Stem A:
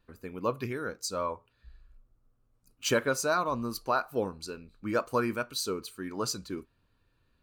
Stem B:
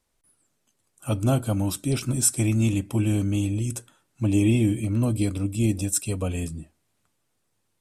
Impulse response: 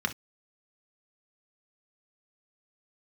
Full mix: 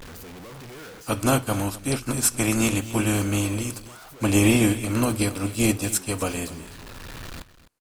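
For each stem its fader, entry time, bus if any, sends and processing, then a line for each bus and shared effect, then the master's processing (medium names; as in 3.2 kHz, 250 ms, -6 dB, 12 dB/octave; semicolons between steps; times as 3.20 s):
-5.5 dB, 0.00 s, no send, echo send -16.5 dB, one-bit comparator; auto duck -7 dB, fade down 0.20 s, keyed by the second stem
+2.0 dB, 0.00 s, send -15.5 dB, echo send -17 dB, spectral contrast reduction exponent 0.61; upward expansion 1.5:1, over -41 dBFS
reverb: on, pre-delay 3 ms
echo: delay 256 ms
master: gain riding within 3 dB 2 s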